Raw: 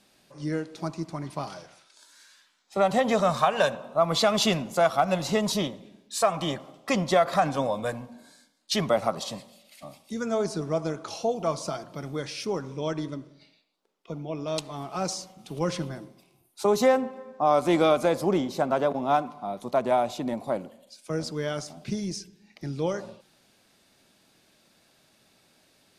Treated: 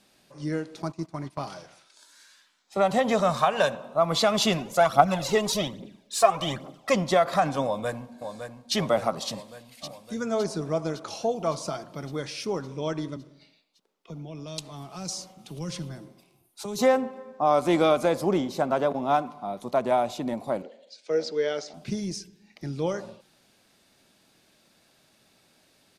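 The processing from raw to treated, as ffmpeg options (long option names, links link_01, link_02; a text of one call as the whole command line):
ffmpeg -i in.wav -filter_complex "[0:a]asettb=1/sr,asplit=3[link_01][link_02][link_03];[link_01]atrim=end=0.824[link_04];[link_02]atrim=start=0.82:end=1.45,asetpts=PTS-STARTPTS,afade=type=in:duration=0.004:curve=qsin,afade=type=out:start_time=0.626:duration=0.004:curve=qsin,agate=range=-13dB:threshold=-37dB:ratio=16:release=100:detection=peak[link_05];[link_03]atrim=start=1.446[link_06];[link_04][link_05]acrossfade=duration=0.004:curve1=hsin:curve2=qsin[link_07];[link_07][link_06]acrossfade=duration=0.004:curve1=qsin:curve2=hsin,asplit=3[link_08][link_09][link_10];[link_08]afade=type=out:start_time=4.57:duration=0.02[link_11];[link_09]aphaser=in_gain=1:out_gain=1:delay=2.9:decay=0.58:speed=1.2:type=triangular,afade=type=in:start_time=4.57:duration=0.02,afade=type=out:start_time=6.93:duration=0.02[link_12];[link_10]afade=type=in:start_time=6.93:duration=0.02[link_13];[link_11][link_12][link_13]amix=inputs=3:normalize=0,asplit=2[link_14][link_15];[link_15]afade=type=in:start_time=7.65:duration=0.01,afade=type=out:start_time=8.75:duration=0.01,aecho=0:1:560|1120|1680|2240|2800|3360|3920|4480|5040:0.398107|0.25877|0.1682|0.10933|0.0710646|0.046192|0.0300248|0.0195161|0.0126855[link_16];[link_14][link_16]amix=inputs=2:normalize=0,asettb=1/sr,asplit=3[link_17][link_18][link_19];[link_17]atrim=end=13.164[link_20];[link_18]atrim=start=13.16:end=16.79,asetpts=PTS-STARTPTS,afade=type=in:duration=0.004:curve=qsin,afade=type=out:start_time=3.626:duration=0.004:curve=qsin,acrossover=split=200|3000[link_21][link_22][link_23];[link_22]acompressor=threshold=-44dB:ratio=2.5:attack=3.2:release=140:knee=2.83:detection=peak[link_24];[link_21][link_24][link_23]amix=inputs=3:normalize=0[link_25];[link_19]atrim=start=16.786[link_26];[link_20][link_25]acrossfade=duration=0.004:curve1=hsin:curve2=qsin[link_27];[link_27][link_26]acrossfade=duration=0.004:curve1=qsin:curve2=hsin,asettb=1/sr,asplit=3[link_28][link_29][link_30];[link_28]atrim=end=20.624[link_31];[link_29]atrim=start=20.62:end=21.74,asetpts=PTS-STARTPTS,afade=type=in:duration=0.004:curve=qsin,afade=type=out:start_time=1.116:duration=0.004:curve=qsin,highpass=330,equalizer=frequency=460:width_type=q:width=4:gain=10,equalizer=frequency=1100:width_type=q:width=4:gain=-8,equalizer=frequency=2000:width_type=q:width=4:gain=4,equalizer=frequency=4100:width_type=q:width=4:gain=4,lowpass=frequency=6300:width=0.5412,lowpass=frequency=6300:width=1.3066[link_32];[link_30]atrim=start=21.736[link_33];[link_31][link_32]acrossfade=duration=0.004:curve1=hsin:curve2=qsin[link_34];[link_34][link_33]acrossfade=duration=0.004:curve1=qsin:curve2=hsin" out.wav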